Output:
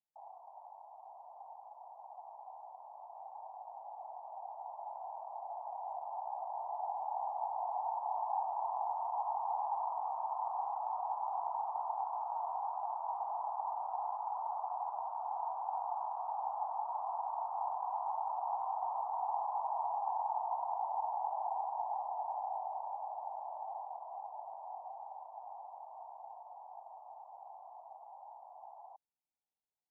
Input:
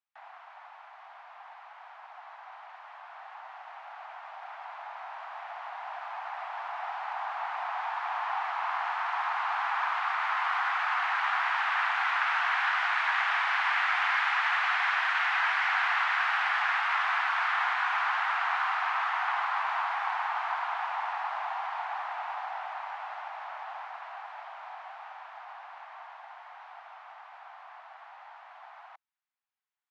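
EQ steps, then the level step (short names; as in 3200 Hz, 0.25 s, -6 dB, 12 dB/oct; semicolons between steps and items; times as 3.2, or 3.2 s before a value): steep low-pass 930 Hz 72 dB/oct; 0.0 dB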